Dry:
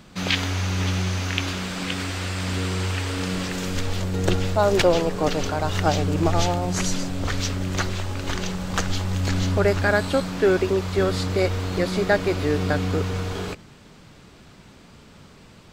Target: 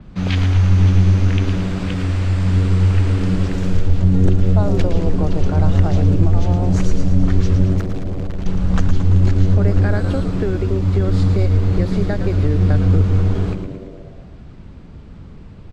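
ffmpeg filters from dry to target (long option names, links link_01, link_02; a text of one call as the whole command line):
ffmpeg -i in.wav -filter_complex "[0:a]aemphasis=mode=reproduction:type=riaa,alimiter=limit=-5dB:level=0:latency=1:release=176,acrossover=split=180|3000[link_01][link_02][link_03];[link_02]acompressor=threshold=-20dB:ratio=6[link_04];[link_01][link_04][link_03]amix=inputs=3:normalize=0,asettb=1/sr,asplit=3[link_05][link_06][link_07];[link_05]atrim=end=7.734[link_08];[link_06]atrim=start=7.73:end=8.46,asetpts=PTS-STARTPTS,afade=type=in:duration=0.004:curve=qsin,afade=type=out:start_time=0.726:duration=0.004:curve=qsin,volume=20.5dB,asoftclip=hard,volume=-20.5dB[link_09];[link_07]atrim=start=8.456[link_10];[link_08][link_09]acrossfade=duration=0.004:curve1=hsin:curve2=qsin[link_11];[link_11][link_10]acrossfade=duration=0.004:curve1=qsin:curve2=hsin,asplit=2[link_12][link_13];[link_13]asplit=8[link_14][link_15][link_16][link_17][link_18][link_19][link_20][link_21];[link_14]adelay=112,afreqshift=-96,volume=-8dB[link_22];[link_15]adelay=224,afreqshift=-192,volume=-12.4dB[link_23];[link_16]adelay=336,afreqshift=-288,volume=-16.9dB[link_24];[link_17]adelay=448,afreqshift=-384,volume=-21.3dB[link_25];[link_18]adelay=560,afreqshift=-480,volume=-25.7dB[link_26];[link_19]adelay=672,afreqshift=-576,volume=-30.2dB[link_27];[link_20]adelay=784,afreqshift=-672,volume=-34.6dB[link_28];[link_21]adelay=896,afreqshift=-768,volume=-39.1dB[link_29];[link_22][link_23][link_24][link_25][link_26][link_27][link_28][link_29]amix=inputs=8:normalize=0[link_30];[link_12][link_30]amix=inputs=2:normalize=0,adynamicequalizer=threshold=0.00631:dfrequency=5800:dqfactor=0.7:tfrequency=5800:tqfactor=0.7:attack=5:release=100:ratio=0.375:range=3:mode=boostabove:tftype=highshelf,volume=-1dB" out.wav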